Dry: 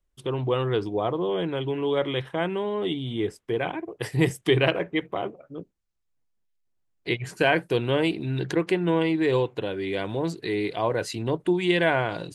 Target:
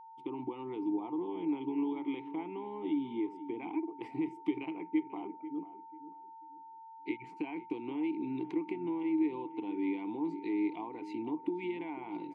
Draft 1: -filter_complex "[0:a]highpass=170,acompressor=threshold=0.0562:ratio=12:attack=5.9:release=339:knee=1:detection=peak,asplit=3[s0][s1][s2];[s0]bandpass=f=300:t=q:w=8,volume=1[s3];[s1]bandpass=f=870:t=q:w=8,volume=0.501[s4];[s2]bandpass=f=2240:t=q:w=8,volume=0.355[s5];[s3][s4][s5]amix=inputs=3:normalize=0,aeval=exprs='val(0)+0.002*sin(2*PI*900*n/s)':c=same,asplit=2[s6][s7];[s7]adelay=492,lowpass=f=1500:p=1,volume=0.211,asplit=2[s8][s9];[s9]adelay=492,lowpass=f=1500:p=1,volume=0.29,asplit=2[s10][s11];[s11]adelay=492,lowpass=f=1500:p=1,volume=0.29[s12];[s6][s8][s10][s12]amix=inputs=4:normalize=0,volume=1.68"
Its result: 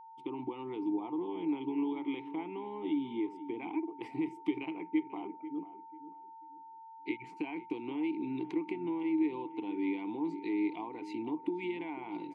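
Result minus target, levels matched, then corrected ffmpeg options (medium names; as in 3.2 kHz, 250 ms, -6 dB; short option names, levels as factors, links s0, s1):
4 kHz band +3.0 dB
-filter_complex "[0:a]highpass=170,acompressor=threshold=0.0562:ratio=12:attack=5.9:release=339:knee=1:detection=peak,asplit=3[s0][s1][s2];[s0]bandpass=f=300:t=q:w=8,volume=1[s3];[s1]bandpass=f=870:t=q:w=8,volume=0.501[s4];[s2]bandpass=f=2240:t=q:w=8,volume=0.355[s5];[s3][s4][s5]amix=inputs=3:normalize=0,highshelf=f=2400:g=-5,aeval=exprs='val(0)+0.002*sin(2*PI*900*n/s)':c=same,asplit=2[s6][s7];[s7]adelay=492,lowpass=f=1500:p=1,volume=0.211,asplit=2[s8][s9];[s9]adelay=492,lowpass=f=1500:p=1,volume=0.29,asplit=2[s10][s11];[s11]adelay=492,lowpass=f=1500:p=1,volume=0.29[s12];[s6][s8][s10][s12]amix=inputs=4:normalize=0,volume=1.68"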